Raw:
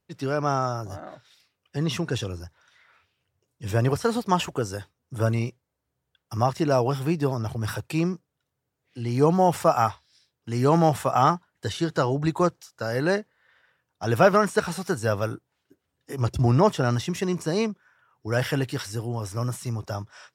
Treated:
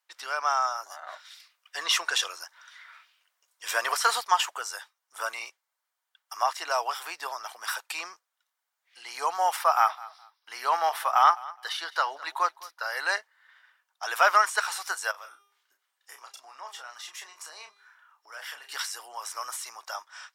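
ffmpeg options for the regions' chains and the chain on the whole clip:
-filter_complex "[0:a]asettb=1/sr,asplit=3[a][b][c];[a]atrim=end=1.084[d];[b]atrim=start=1.08:end=4.21,asetpts=PTS-STARTPTS,afade=t=in:d=0.004:c=qsin,afade=t=out:st=3.126:d=0.004:c=qsin,bandreject=f=830:w=11,acontrast=48[e];[c]atrim=start=4.206[f];[d][e]acrossfade=d=0.004:c1=hsin:c2=qsin[g];[g][f]acrossfade=d=0.004:c1=qsin:c2=hsin,asettb=1/sr,asplit=3[h][i][j];[h]atrim=end=9.564[k];[i]atrim=start=9.56:end=12.97,asetpts=PTS-STARTPTS,afade=t=in:d=0.004:c=qsin,afade=t=out:st=3.406:d=0.004:c=qsin,equalizer=f=7.4k:t=o:w=0.47:g=-14,aecho=1:1:209|418:0.1|0.022,atrim=end_sample=150381[l];[j]atrim=start=12.966[m];[k][l]acrossfade=d=0.004:c1=hsin:c2=qsin[n];[n][m]acrossfade=d=0.004:c1=qsin:c2=hsin,asettb=1/sr,asplit=3[o][p][q];[o]atrim=end=15.114[r];[p]atrim=start=15.11:end=18.72,asetpts=PTS-STARTPTS,afade=t=in:d=0.004:c=qsin,afade=t=out:st=3.606:d=0.004:c=qsin,bandreject=f=402.6:t=h:w=4,bandreject=f=805.2:t=h:w=4,bandreject=f=1.2078k:t=h:w=4,bandreject=f=1.6104k:t=h:w=4,bandreject=f=2.013k:t=h:w=4,bandreject=f=2.4156k:t=h:w=4,bandreject=f=2.8182k:t=h:w=4,bandreject=f=3.2208k:t=h:w=4,bandreject=f=3.6234k:t=h:w=4,bandreject=f=4.026k:t=h:w=4,bandreject=f=4.4286k:t=h:w=4,bandreject=f=4.8312k:t=h:w=4,bandreject=f=5.2338k:t=h:w=4,bandreject=f=5.6364k:t=h:w=4,bandreject=f=6.039k:t=h:w=4,bandreject=f=6.4416k:t=h:w=4,bandreject=f=6.8442k:t=h:w=4,bandreject=f=7.2468k:t=h:w=4,bandreject=f=7.6494k:t=h:w=4,bandreject=f=8.052k:t=h:w=4,bandreject=f=8.4546k:t=h:w=4,bandreject=f=8.8572k:t=h:w=4,bandreject=f=9.2598k:t=h:w=4,bandreject=f=9.6624k:t=h:w=4,bandreject=f=10.065k:t=h:w=4,bandreject=f=10.4676k:t=h:w=4,bandreject=f=10.8702k:t=h:w=4,bandreject=f=11.2728k:t=h:w=4,bandreject=f=11.6754k:t=h:w=4,bandreject=f=12.078k:t=h:w=4,bandreject=f=12.4806k:t=h:w=4,bandreject=f=12.8832k:t=h:w=4,bandreject=f=13.2858k:t=h:w=4,bandreject=f=13.6884k:t=h:w=4,bandreject=f=14.091k:t=h:w=4,bandreject=f=14.4936k:t=h:w=4,bandreject=f=14.8962k:t=h:w=4,bandreject=f=15.2988k:t=h:w=4,acompressor=threshold=-42dB:ratio=2.5:attack=3.2:release=140:knee=1:detection=peak,asplit=2[s][t];[t]adelay=32,volume=-6.5dB[u];[s][u]amix=inputs=2:normalize=0,atrim=end_sample=159201[v];[q]atrim=start=18.716[w];[r][v]acrossfade=d=0.004:c1=hsin:c2=qsin[x];[x][w]acrossfade=d=0.004:c1=qsin:c2=hsin,highpass=f=890:w=0.5412,highpass=f=890:w=1.3066,bandreject=f=2.6k:w=21,volume=3.5dB"

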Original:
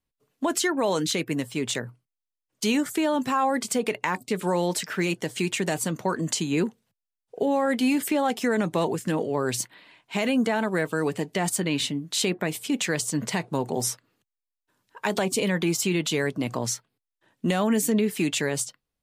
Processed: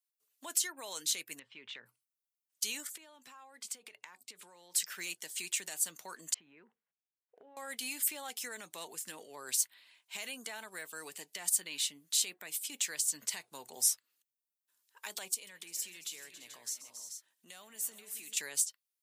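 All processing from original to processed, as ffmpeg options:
-filter_complex "[0:a]asettb=1/sr,asplit=3[a][b][c];[a]atrim=end=1.394[d];[b]atrim=start=1.39:end=1.86,asetpts=PTS-STARTPTS,afade=t=in:d=0.004:c=qsin,afade=t=out:st=0.466:d=0.004:c=qsin,lowpass=f=2.9k:w=0.5412,lowpass=f=2.9k:w=1.3066,equalizer=f=690:w=4.5:g=-6.5,acompressor=threshold=-29dB:ratio=3:attack=3.2:release=140:knee=1:detection=peak[e];[c]atrim=start=1.856[f];[d][e]acrossfade=d=0.004:c1=hsin:c2=qsin[g];[g][f]acrossfade=d=0.004:c1=qsin:c2=hsin,asettb=1/sr,asplit=3[h][i][j];[h]atrim=end=2.874[k];[i]atrim=start=2.87:end=4.74,asetpts=PTS-STARTPTS,afade=t=in:d=0.004:c=qsin,afade=t=out:st=1.866:d=0.004:c=qsin,lowpass=f=3k:p=1,acompressor=threshold=-33dB:ratio=10:attack=3.2:release=140:knee=1:detection=peak[l];[j]atrim=start=4.736[m];[k][l]acrossfade=d=0.004:c1=hsin:c2=qsin[n];[n][m]acrossfade=d=0.004:c1=qsin:c2=hsin,asettb=1/sr,asplit=3[o][p][q];[o]atrim=end=6.344[r];[p]atrim=start=6.34:end=7.57,asetpts=PTS-STARTPTS,afade=t=in:d=0.004:c=qsin,afade=t=out:st=1.226:d=0.004:c=qsin,lowpass=f=2k:w=0.5412,lowpass=f=2k:w=1.3066,acompressor=threshold=-31dB:ratio=12:attack=3.2:release=140:knee=1:detection=peak[s];[q]atrim=start=7.566[t];[r][s]acrossfade=d=0.004:c1=hsin:c2=qsin[u];[u][t]acrossfade=d=0.004:c1=qsin:c2=hsin,asettb=1/sr,asplit=3[v][w][x];[v]atrim=end=15.344[y];[w]atrim=start=15.34:end=18.37,asetpts=PTS-STARTPTS,afade=t=in:d=0.004:c=qsin,afade=t=out:st=3.026:d=0.004:c=qsin,aecho=1:1:129|274|332|345|432:0.106|0.158|0.106|0.133|0.188,atrim=end_sample=133623,acompressor=threshold=-40dB:ratio=2:attack=3.2:release=140:knee=1:detection=peak[z];[x]atrim=start=18.366[aa];[y][z]acrossfade=d=0.004:c1=hsin:c2=qsin[ab];[ab][aa]acrossfade=d=0.004:c1=qsin:c2=hsin,alimiter=limit=-16dB:level=0:latency=1:release=309,aderivative"

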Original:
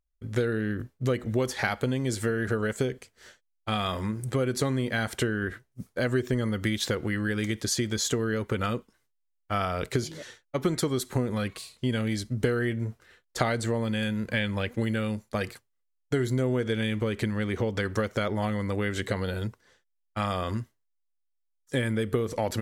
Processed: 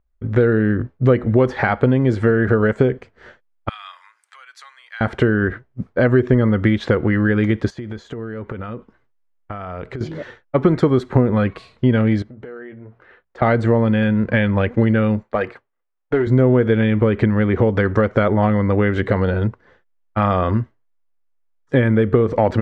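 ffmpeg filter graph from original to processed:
-filter_complex "[0:a]asettb=1/sr,asplit=3[a][b][c];[a]atrim=end=3.694[d];[b]atrim=start=3.69:end=5.01,asetpts=PTS-STARTPTS,afade=t=in:d=0.004:c=qsin,afade=t=out:st=1.316:d=0.004:c=qsin,highpass=f=1k:w=0.5412,highpass=f=1k:w=1.3066,aderivative[e];[c]atrim=start=5.006[f];[d][e]acrossfade=d=0.004:c1=hsin:c2=qsin[g];[g][f]acrossfade=d=0.004:c1=qsin:c2=hsin,asettb=1/sr,asplit=3[h][i][j];[h]atrim=end=7.704[k];[i]atrim=start=7.7:end=10.01,asetpts=PTS-STARTPTS,afade=t=in:d=0.004:c=qsin,afade=t=out:st=2.306:d=0.004:c=qsin,bandreject=f=5.4k:w=22,acompressor=threshold=-37dB:ratio=10:attack=3.2:release=140:knee=1:detection=peak[l];[j]atrim=start=10.006[m];[k][l]acrossfade=d=0.004:c1=hsin:c2=qsin[n];[n][m]acrossfade=d=0.004:c1=qsin:c2=hsin,asettb=1/sr,asplit=3[o][p][q];[o]atrim=end=12.224[r];[p]atrim=start=12.22:end=13.42,asetpts=PTS-STARTPTS,afade=t=in:d=0.004:c=qsin,afade=t=out:st=1.196:d=0.004:c=qsin,bandreject=f=60:t=h:w=6,bandreject=f=120:t=h:w=6,bandreject=f=180:t=h:w=6,acompressor=threshold=-42dB:ratio=6:attack=3.2:release=140:knee=1:detection=peak,bass=f=250:g=-10,treble=f=4k:g=-7[s];[q]atrim=start=13.416[t];[r][s]acrossfade=d=0.004:c1=hsin:c2=qsin[u];[u][t]acrossfade=d=0.004:c1=qsin:c2=hsin,asettb=1/sr,asplit=3[v][w][x];[v]atrim=end=15.234[y];[w]atrim=start=15.23:end=16.27,asetpts=PTS-STARTPTS,afade=t=in:d=0.004:c=qsin,afade=t=out:st=1.036:d=0.004:c=qsin,bass=f=250:g=-12,treble=f=4k:g=-7,aeval=exprs='clip(val(0),-1,0.0708)':c=same[z];[x]atrim=start=16.266[aa];[y][z]acrossfade=d=0.004:c1=hsin:c2=qsin[ab];[ab][aa]acrossfade=d=0.004:c1=qsin:c2=hsin,lowpass=1.6k,alimiter=level_in=15dB:limit=-1dB:release=50:level=0:latency=1,volume=-2.5dB"

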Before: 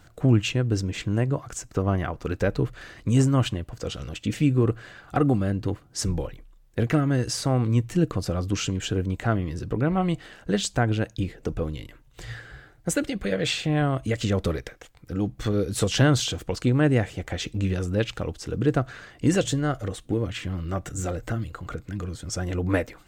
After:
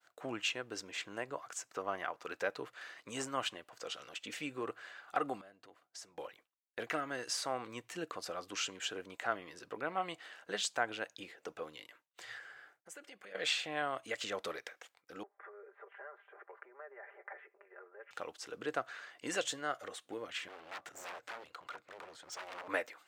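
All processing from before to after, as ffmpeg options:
-filter_complex "[0:a]asettb=1/sr,asplit=3[a][b][c];[a]atrim=end=5.414[d];[b]atrim=start=5.41:end=6.18,asetpts=PTS-STARTPTS,afade=t=in:d=0.004:c=qsin,afade=t=out:st=0.766:d=0.004:c=qsin,equalizer=f=670:t=o:w=0.22:g=7.5,acompressor=threshold=-40dB:ratio=4:attack=3.2:release=140:knee=1:detection=peak[e];[c]atrim=start=6.176[f];[d][e]acrossfade=d=0.004:c1=hsin:c2=qsin[g];[g][f]acrossfade=d=0.004:c1=qsin:c2=hsin,asettb=1/sr,asplit=3[h][i][j];[h]atrim=end=12.374[k];[i]atrim=start=12.37:end=13.35,asetpts=PTS-STARTPTS,afade=t=in:d=0.004:c=qsin,afade=t=out:st=0.976:d=0.004:c=qsin,equalizer=f=3.9k:t=o:w=0.25:g=-7.5,acompressor=threshold=-38dB:ratio=4:attack=3.2:release=140:knee=1:detection=peak[l];[j]atrim=start=13.346[m];[k][l]acrossfade=d=0.004:c1=hsin:c2=qsin[n];[n][m]acrossfade=d=0.004:c1=qsin:c2=hsin,asettb=1/sr,asplit=3[o][p][q];[o]atrim=end=15.234[r];[p]atrim=start=15.23:end=18.11,asetpts=PTS-STARTPTS,afade=t=in:d=0.004:c=qsin,afade=t=out:st=2.876:d=0.004:c=qsin,aecho=1:1:5:0.92,atrim=end_sample=127008,acompressor=threshold=-33dB:ratio=8:attack=3.2:release=140:knee=1:detection=peak,asuperpass=centerf=850:order=12:qfactor=0.53[s];[q]atrim=start=18.106[t];[r][s]acrossfade=d=0.004:c1=hsin:c2=qsin[u];[u][t]acrossfade=d=0.004:c1=qsin:c2=hsin,asettb=1/sr,asplit=3[v][w][x];[v]atrim=end=20.484[y];[w]atrim=start=20.48:end=22.68,asetpts=PTS-STARTPTS,afade=t=in:d=0.004:c=qsin,afade=t=out:st=2.196:d=0.004:c=qsin,highshelf=f=6.6k:g=-11.5,aeval=exprs='0.0282*(abs(mod(val(0)/0.0282+3,4)-2)-1)':c=same[z];[x]atrim=start=22.676[aa];[y][z]acrossfade=d=0.004:c1=hsin:c2=qsin[ab];[ab][aa]acrossfade=d=0.004:c1=qsin:c2=hsin,highpass=750,agate=range=-33dB:threshold=-55dB:ratio=3:detection=peak,highshelf=f=4.8k:g=-5,volume=-4.5dB"

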